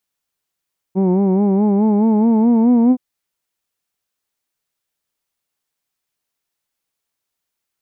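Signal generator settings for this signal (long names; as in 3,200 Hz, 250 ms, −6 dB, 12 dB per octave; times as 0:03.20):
vowel by formant synthesis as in who'd, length 2.02 s, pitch 184 Hz, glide +5 semitones, vibrato 4.7 Hz, vibrato depth 0.8 semitones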